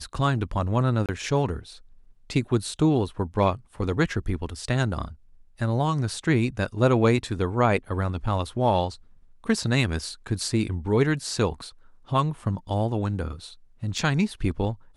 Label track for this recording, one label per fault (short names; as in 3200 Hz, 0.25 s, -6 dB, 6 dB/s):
1.060000	1.090000	gap 27 ms
13.980000	13.980000	gap 3.7 ms